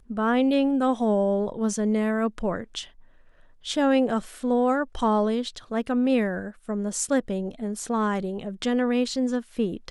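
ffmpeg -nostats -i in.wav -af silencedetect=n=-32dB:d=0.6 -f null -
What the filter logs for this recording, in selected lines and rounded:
silence_start: 2.82
silence_end: 3.66 | silence_duration: 0.84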